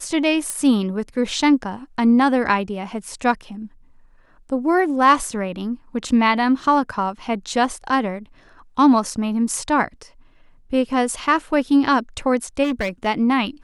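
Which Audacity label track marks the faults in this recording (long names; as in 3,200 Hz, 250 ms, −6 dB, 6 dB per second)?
0.500000	0.500000	click −11 dBFS
12.630000	13.070000	clipping −18 dBFS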